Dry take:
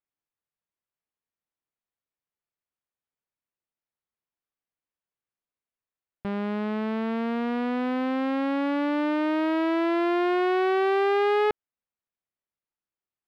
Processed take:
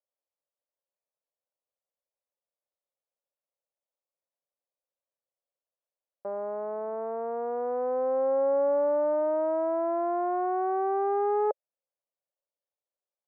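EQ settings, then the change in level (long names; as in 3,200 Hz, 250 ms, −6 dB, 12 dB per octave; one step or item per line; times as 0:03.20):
high-pass with resonance 550 Hz, resonance Q 5.7
low-pass filter 1,200 Hz 24 dB per octave
high-frequency loss of the air 74 metres
−5.5 dB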